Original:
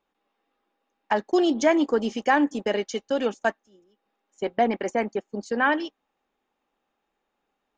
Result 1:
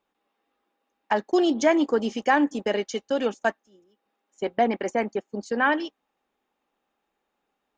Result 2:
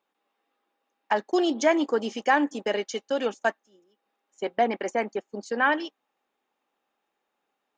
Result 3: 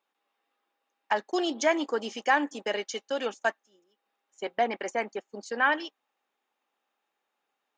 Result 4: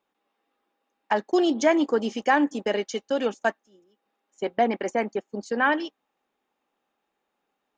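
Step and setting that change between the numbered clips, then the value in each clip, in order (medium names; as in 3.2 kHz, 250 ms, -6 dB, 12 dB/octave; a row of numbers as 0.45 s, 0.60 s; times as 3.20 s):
high-pass, cutoff frequency: 41 Hz, 330 Hz, 840 Hz, 120 Hz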